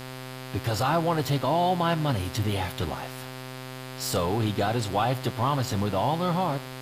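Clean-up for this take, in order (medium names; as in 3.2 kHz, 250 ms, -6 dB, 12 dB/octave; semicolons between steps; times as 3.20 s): de-hum 129.2 Hz, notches 40; noise print and reduce 30 dB; inverse comb 94 ms -21.5 dB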